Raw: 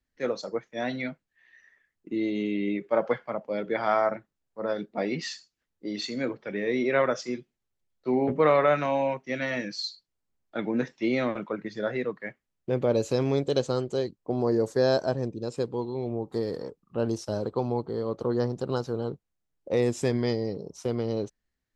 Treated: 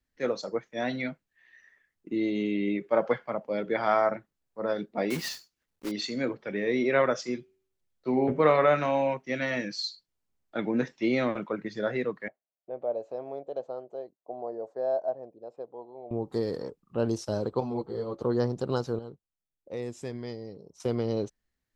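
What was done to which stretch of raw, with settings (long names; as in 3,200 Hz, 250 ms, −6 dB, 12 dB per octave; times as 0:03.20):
0:05.10–0:05.92: one scale factor per block 3 bits
0:07.38–0:09.07: hum removal 95.15 Hz, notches 35
0:12.28–0:16.11: resonant band-pass 670 Hz, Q 4.5
0:17.60–0:18.22: string-ensemble chorus
0:18.99–0:20.80: clip gain −11 dB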